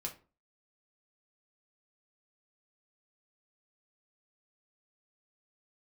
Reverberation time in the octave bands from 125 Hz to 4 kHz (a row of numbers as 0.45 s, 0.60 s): 0.40 s, 0.40 s, 0.40 s, 0.35 s, 0.30 s, 0.25 s